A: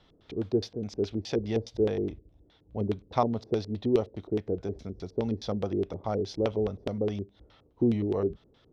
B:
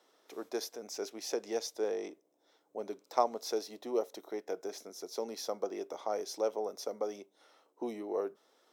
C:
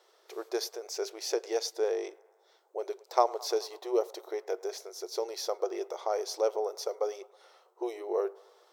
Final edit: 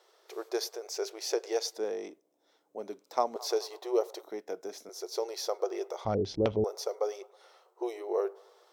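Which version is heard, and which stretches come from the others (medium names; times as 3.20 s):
C
1.78–3.36 s: from B
4.23–4.89 s: from B
6.05–6.64 s: from A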